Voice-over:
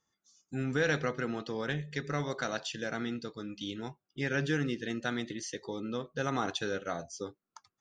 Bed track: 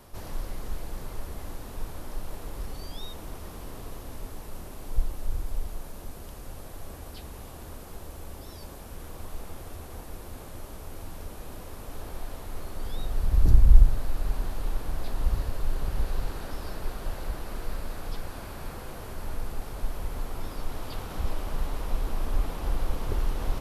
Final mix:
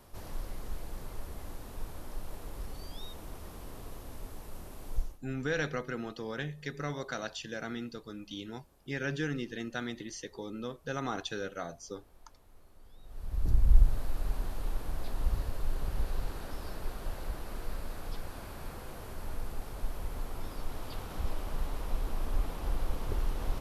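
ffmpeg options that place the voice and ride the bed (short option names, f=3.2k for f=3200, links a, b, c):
-filter_complex "[0:a]adelay=4700,volume=-3dB[a];[1:a]volume=13dB,afade=t=out:st=4.94:d=0.25:silence=0.133352,afade=t=in:st=13.02:d=0.94:silence=0.125893[b];[a][b]amix=inputs=2:normalize=0"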